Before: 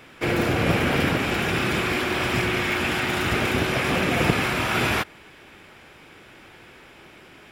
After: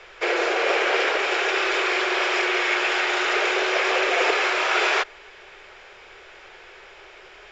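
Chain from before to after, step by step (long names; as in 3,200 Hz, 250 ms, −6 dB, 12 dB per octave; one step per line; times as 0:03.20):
Chebyshev band-pass filter 380–7,000 Hz, order 5
background noise brown −64 dBFS
level +3.5 dB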